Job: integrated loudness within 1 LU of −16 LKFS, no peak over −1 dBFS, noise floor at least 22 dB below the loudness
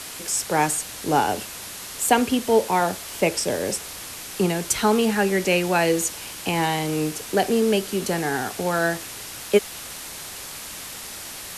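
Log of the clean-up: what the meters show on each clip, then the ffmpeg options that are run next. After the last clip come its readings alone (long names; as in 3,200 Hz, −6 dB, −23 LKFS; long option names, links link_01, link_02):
background noise floor −37 dBFS; target noise floor −46 dBFS; integrated loudness −23.5 LKFS; sample peak −3.5 dBFS; target loudness −16.0 LKFS
→ -af "afftdn=noise_reduction=9:noise_floor=-37"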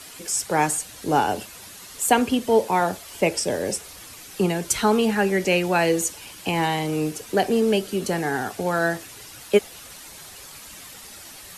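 background noise floor −42 dBFS; target noise floor −45 dBFS
→ -af "afftdn=noise_reduction=6:noise_floor=-42"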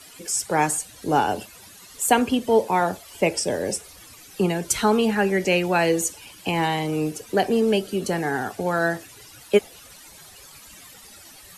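background noise floor −47 dBFS; integrated loudness −23.0 LKFS; sample peak −4.0 dBFS; target loudness −16.0 LKFS
→ -af "volume=7dB,alimiter=limit=-1dB:level=0:latency=1"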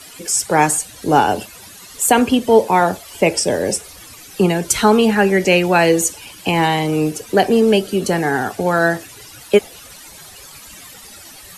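integrated loudness −16.0 LKFS; sample peak −1.0 dBFS; background noise floor −40 dBFS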